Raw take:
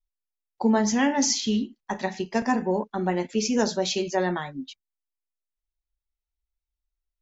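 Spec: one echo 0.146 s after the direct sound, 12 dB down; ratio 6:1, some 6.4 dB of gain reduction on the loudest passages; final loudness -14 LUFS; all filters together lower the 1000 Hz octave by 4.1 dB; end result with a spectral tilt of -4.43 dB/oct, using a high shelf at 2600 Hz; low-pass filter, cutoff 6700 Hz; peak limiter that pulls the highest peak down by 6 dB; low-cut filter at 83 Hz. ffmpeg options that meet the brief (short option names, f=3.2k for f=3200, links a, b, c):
-af "highpass=83,lowpass=6.7k,equalizer=f=1k:t=o:g=-5,highshelf=f=2.6k:g=-4.5,acompressor=threshold=-25dB:ratio=6,alimiter=limit=-23dB:level=0:latency=1,aecho=1:1:146:0.251,volume=18.5dB"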